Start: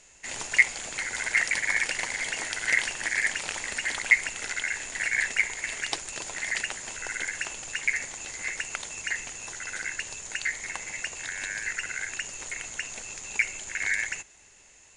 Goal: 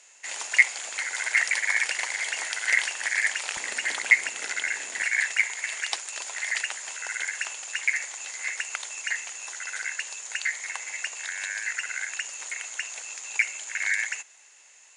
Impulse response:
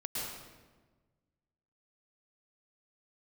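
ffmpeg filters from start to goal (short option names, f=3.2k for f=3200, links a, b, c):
-af "asetnsamples=n=441:p=0,asendcmd='3.57 highpass f 310;5.02 highpass f 760',highpass=660,volume=1.5dB"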